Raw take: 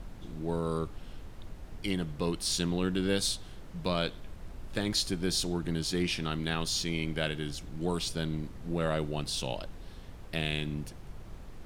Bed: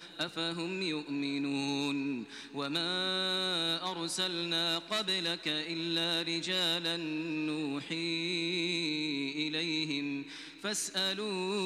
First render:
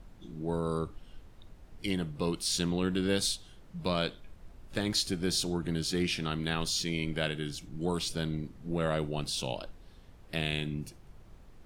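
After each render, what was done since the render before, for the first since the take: noise print and reduce 8 dB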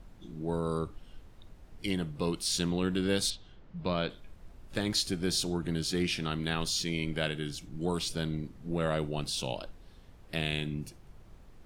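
3.30–4.10 s: distance through air 170 m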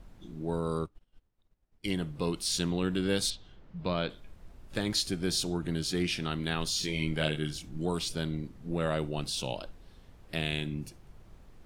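0.86–1.86 s: upward expansion 2.5:1, over -51 dBFS; 6.80–7.83 s: doubling 26 ms -4 dB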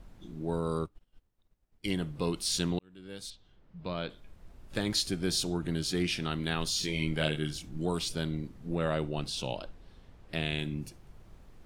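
2.79–4.78 s: fade in; 8.75–10.59 s: treble shelf 8 kHz -9 dB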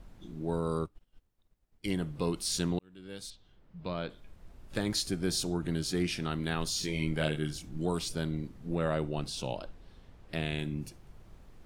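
dynamic bell 3.2 kHz, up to -5 dB, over -48 dBFS, Q 1.3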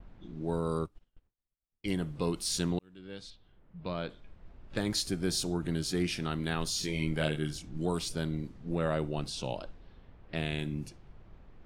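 gate with hold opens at -53 dBFS; level-controlled noise filter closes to 2.3 kHz, open at -30.5 dBFS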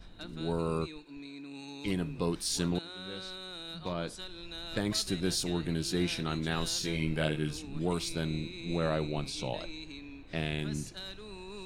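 add bed -11.5 dB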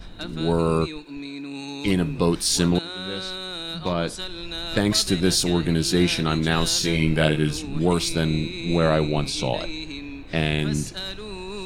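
trim +11 dB

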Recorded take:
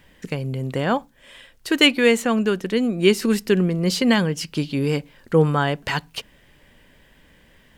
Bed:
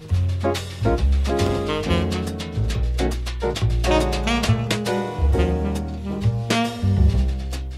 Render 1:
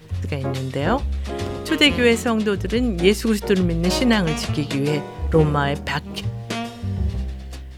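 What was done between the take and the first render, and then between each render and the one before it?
add bed -6.5 dB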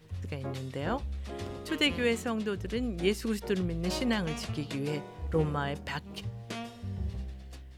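trim -12 dB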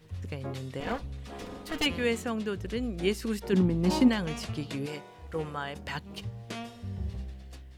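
0.80–1.86 s: comb filter that takes the minimum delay 4.1 ms; 3.52–4.07 s: small resonant body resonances 250/880 Hz, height 16 dB -> 13 dB, ringing for 30 ms; 4.86–5.76 s: bass shelf 430 Hz -10 dB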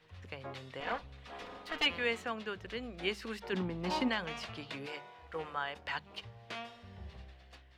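three-band isolator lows -13 dB, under 590 Hz, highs -16 dB, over 4.5 kHz; hum notches 50/100/150/200 Hz

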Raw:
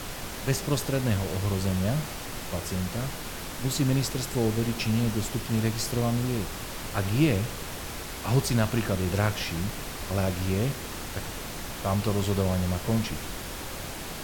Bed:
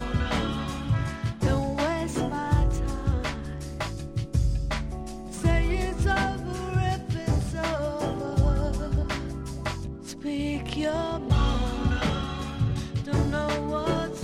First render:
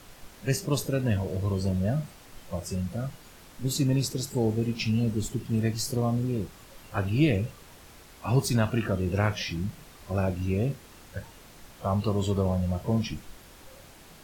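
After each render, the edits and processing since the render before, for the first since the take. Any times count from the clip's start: noise print and reduce 14 dB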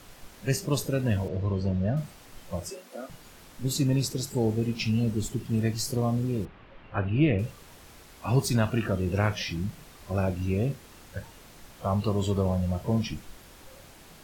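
1.28–1.97 s: distance through air 180 m; 2.70–3.10 s: elliptic high-pass 260 Hz; 6.45–7.39 s: low-pass 2.9 kHz 24 dB/octave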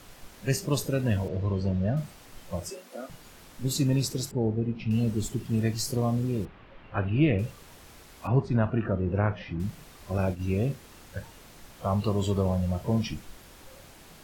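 4.31–4.91 s: tape spacing loss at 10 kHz 42 dB; 8.27–9.60 s: low-pass 1.5 kHz; 10.18–10.63 s: expander -29 dBFS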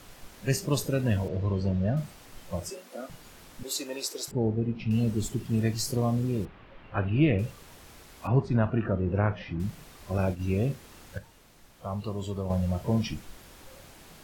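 3.63–4.28 s: high-pass 400 Hz 24 dB/octave; 11.18–12.50 s: gain -7 dB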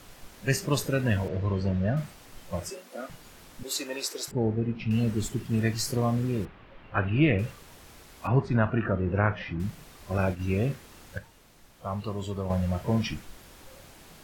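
dynamic bell 1.7 kHz, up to +7 dB, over -49 dBFS, Q 0.92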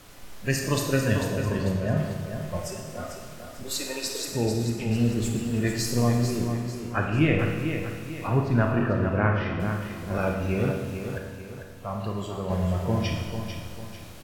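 feedback delay 445 ms, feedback 40%, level -8 dB; Schroeder reverb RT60 1.4 s, combs from 26 ms, DRR 2.5 dB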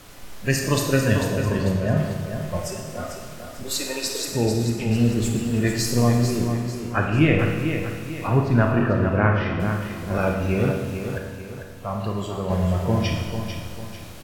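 trim +4 dB

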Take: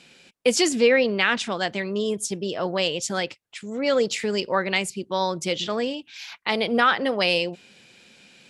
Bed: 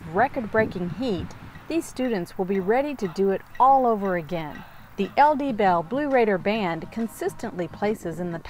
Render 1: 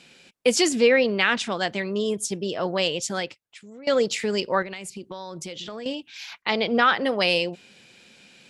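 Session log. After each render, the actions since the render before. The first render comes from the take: 2.98–3.87 s: fade out, to -19.5 dB; 4.62–5.86 s: compression 16:1, threshold -31 dBFS; 6.42–6.95 s: brick-wall FIR low-pass 7.6 kHz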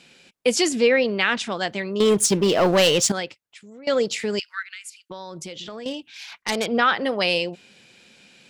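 2.00–3.12 s: waveshaping leveller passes 3; 4.39–5.10 s: Chebyshev high-pass 1.4 kHz, order 5; 5.80–6.66 s: self-modulated delay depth 0.15 ms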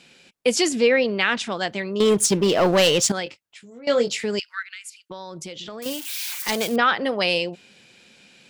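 3.24–4.17 s: doubling 21 ms -6.5 dB; 5.82–6.76 s: zero-crossing glitches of -22.5 dBFS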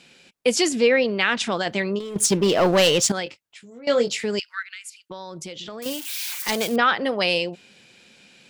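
1.40–2.16 s: compressor with a negative ratio -26 dBFS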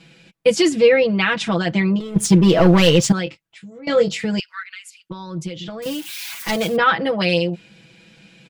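tone controls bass +10 dB, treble -6 dB; comb 6.1 ms, depth 91%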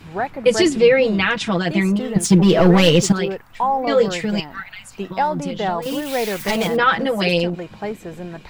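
add bed -2.5 dB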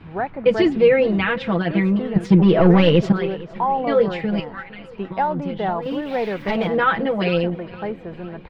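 distance through air 370 m; feedback delay 459 ms, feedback 50%, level -20 dB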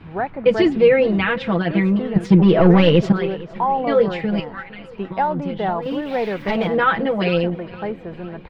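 trim +1 dB

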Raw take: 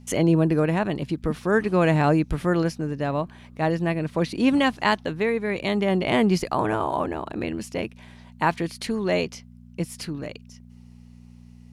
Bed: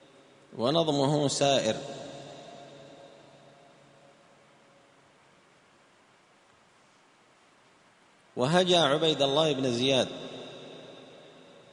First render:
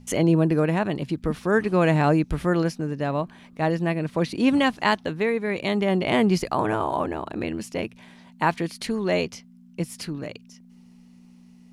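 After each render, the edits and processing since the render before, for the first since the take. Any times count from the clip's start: de-hum 60 Hz, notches 2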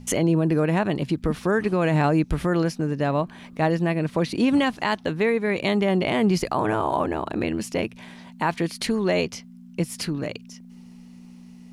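in parallel at -0.5 dB: compression, threshold -31 dBFS, peak gain reduction 15.5 dB; on the sum: peak limiter -11.5 dBFS, peak gain reduction 6.5 dB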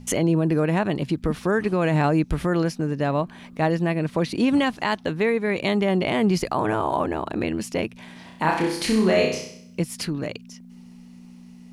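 8.13–9.81 s: flutter echo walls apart 5.5 m, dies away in 0.65 s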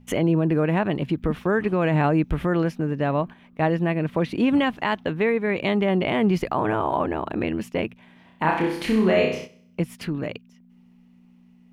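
gate -33 dBFS, range -9 dB; high-order bell 6.8 kHz -11.5 dB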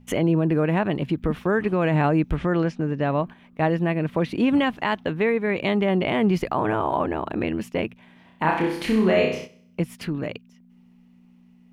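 2.36–3.20 s: low-pass 7.6 kHz 24 dB/octave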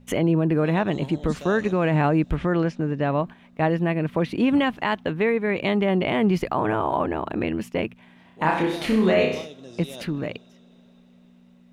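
add bed -14.5 dB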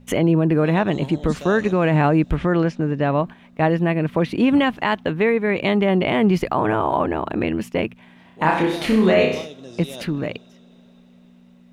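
trim +3.5 dB

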